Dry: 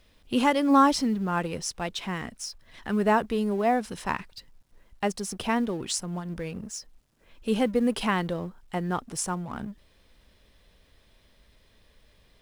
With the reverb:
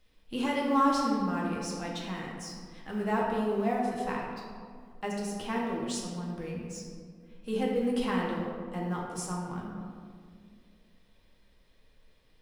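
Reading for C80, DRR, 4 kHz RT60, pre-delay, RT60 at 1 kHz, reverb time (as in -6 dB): 2.0 dB, -4.0 dB, 1.0 s, 4 ms, 1.8 s, 2.1 s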